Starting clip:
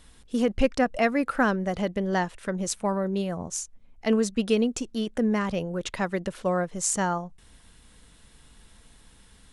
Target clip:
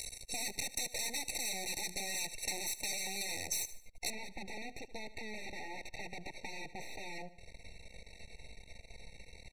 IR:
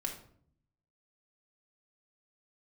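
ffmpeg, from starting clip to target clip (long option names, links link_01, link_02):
-af "acrusher=bits=9:mode=log:mix=0:aa=0.000001,aeval=exprs='(tanh(15.8*val(0)+0.15)-tanh(0.15))/15.8':channel_layout=same,aecho=1:1:1.8:0.64,aeval=exprs='(mod(29.9*val(0)+1,2)-1)/29.9':channel_layout=same,lowshelf=frequency=240:gain=-6,aeval=exprs='max(val(0),0)':channel_layout=same,aecho=1:1:75|150|225:0.112|0.037|0.0122,acompressor=threshold=-40dB:ratio=6,asetnsamples=nb_out_samples=441:pad=0,asendcmd='4.1 lowpass f 2200',lowpass=8400,acompressor=mode=upward:threshold=-43dB:ratio=2.5,crystalizer=i=6.5:c=0,afftfilt=real='re*eq(mod(floor(b*sr/1024/910),2),0)':imag='im*eq(mod(floor(b*sr/1024/910),2),0)':win_size=1024:overlap=0.75,volume=1.5dB"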